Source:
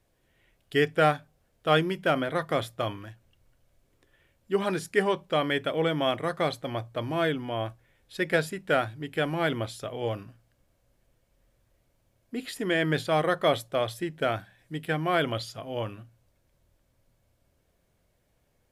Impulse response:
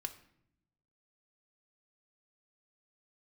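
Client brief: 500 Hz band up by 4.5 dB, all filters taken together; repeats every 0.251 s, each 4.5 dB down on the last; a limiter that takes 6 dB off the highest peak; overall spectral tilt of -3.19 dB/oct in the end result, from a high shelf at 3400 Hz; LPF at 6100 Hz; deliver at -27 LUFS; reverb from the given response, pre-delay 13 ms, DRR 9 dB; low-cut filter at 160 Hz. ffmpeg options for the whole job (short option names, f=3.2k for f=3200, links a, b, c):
-filter_complex "[0:a]highpass=160,lowpass=6.1k,equalizer=f=500:t=o:g=5.5,highshelf=f=3.4k:g=4.5,alimiter=limit=-12dB:level=0:latency=1,aecho=1:1:251|502|753|1004|1255|1506|1757|2008|2259:0.596|0.357|0.214|0.129|0.0772|0.0463|0.0278|0.0167|0.01,asplit=2[a][b];[1:a]atrim=start_sample=2205,adelay=13[c];[b][c]afir=irnorm=-1:irlink=0,volume=-7.5dB[d];[a][d]amix=inputs=2:normalize=0,volume=-2.5dB"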